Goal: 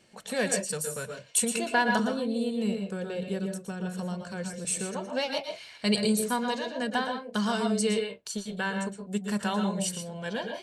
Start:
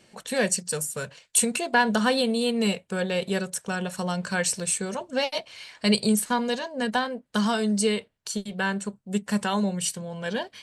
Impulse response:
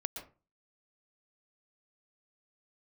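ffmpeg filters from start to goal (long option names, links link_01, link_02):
-filter_complex "[0:a]asettb=1/sr,asplit=3[link_01][link_02][link_03];[link_01]atrim=end=1.994[link_04];[link_02]atrim=start=1.99:end=4.65,asetpts=PTS-STARTPTS,afade=type=in:duration=0.004:curve=qsin,afade=type=out:start_time=2.656:duration=0.004:curve=qsin,acrossover=split=490[link_05][link_06];[link_06]acompressor=threshold=-39dB:ratio=4[link_07];[link_05][link_07]amix=inputs=2:normalize=0[link_08];[link_03]atrim=start=4.646[link_09];[link_04][link_08]acrossfade=duration=0.004:curve1=hsin:curve2=qsin[link_10];[link_10][link_09]acrossfade=duration=0.004:curve1=qsin:curve2=hsin[link_11];[1:a]atrim=start_sample=2205,afade=type=out:start_time=0.23:duration=0.01,atrim=end_sample=10584[link_12];[link_11][link_12]afir=irnorm=-1:irlink=0,volume=-3dB"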